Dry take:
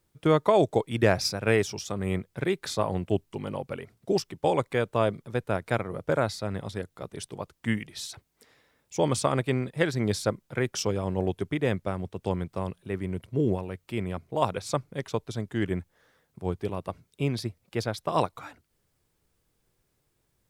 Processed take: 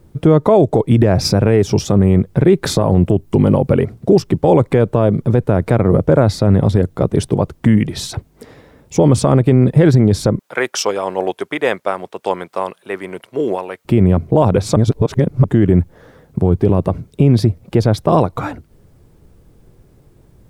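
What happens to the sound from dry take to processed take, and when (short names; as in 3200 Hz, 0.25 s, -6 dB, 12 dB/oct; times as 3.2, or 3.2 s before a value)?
2.65–3.72 high shelf 8700 Hz +6 dB
10.39–13.85 HPF 1000 Hz
14.76–15.44 reverse
whole clip: tilt shelf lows +9 dB, about 900 Hz; compressor, threshold -20 dBFS; maximiser +20.5 dB; gain -1 dB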